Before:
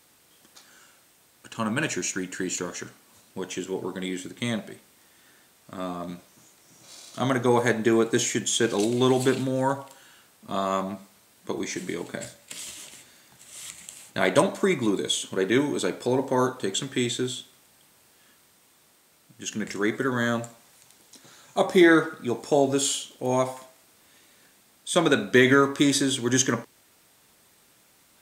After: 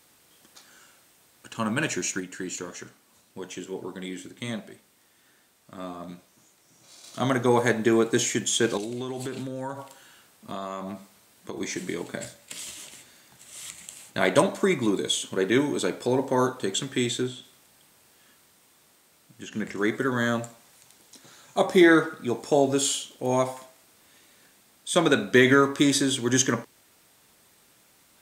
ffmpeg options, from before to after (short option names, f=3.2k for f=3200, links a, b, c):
-filter_complex "[0:a]asettb=1/sr,asplit=3[a][b][c];[a]atrim=end=2.204[d];[b]atrim=start=2.2:end=7.04,asetpts=PTS-STARTPTS,afade=t=in:d=0.004:c=qsin,afade=t=out:st=4.836:d=0.004:c=qsin,flanger=delay=2.8:depth=6:regen=-79:speed=1.2:shape=triangular[e];[c]atrim=start=7.036[f];[d][e]acrossfade=d=0.004:c1=hsin:c2=qsin[g];[g][f]acrossfade=d=0.004:c1=qsin:c2=hsin,asettb=1/sr,asplit=3[h][i][j];[h]atrim=end=8.774[k];[i]atrim=start=8.77:end=11.61,asetpts=PTS-STARTPTS,afade=t=in:d=0.004:c=qsin,afade=t=out:st=2.836:d=0.004:c=qsin,acompressor=threshold=-30dB:ratio=5:attack=3.2:release=140:knee=1:detection=peak[l];[j]atrim=start=11.606[m];[k][l]acrossfade=d=0.004:c1=hsin:c2=qsin[n];[n][m]acrossfade=d=0.004:c1=qsin:c2=hsin,asettb=1/sr,asplit=3[o][p][q];[o]atrim=end=17.224[r];[p]atrim=start=17.22:end=19.78,asetpts=PTS-STARTPTS,afade=t=in:d=0.004:c=qsin,afade=t=out:st=2.556:d=0.004:c=qsin,acrossover=split=2600[s][t];[t]acompressor=threshold=-45dB:ratio=4:attack=1:release=60[u];[s][u]amix=inputs=2:normalize=0[v];[q]atrim=start=19.776[w];[r][v]acrossfade=d=0.004:c1=hsin:c2=qsin[x];[x][w]acrossfade=d=0.004:c1=qsin:c2=hsin"